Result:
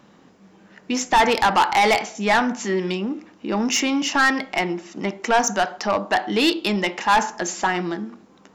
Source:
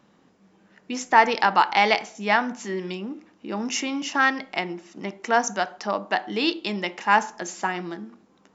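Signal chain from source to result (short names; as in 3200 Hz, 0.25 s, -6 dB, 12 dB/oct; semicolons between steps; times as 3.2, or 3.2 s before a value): soft clip -19 dBFS, distortion -7 dB; gain +7.5 dB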